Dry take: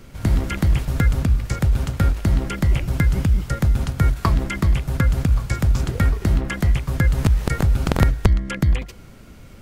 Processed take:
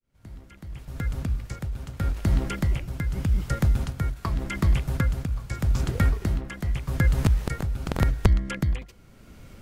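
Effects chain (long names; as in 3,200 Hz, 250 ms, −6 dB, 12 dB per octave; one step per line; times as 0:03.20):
fade in at the beginning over 2.51 s
amplitude tremolo 0.84 Hz, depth 60%
level −3 dB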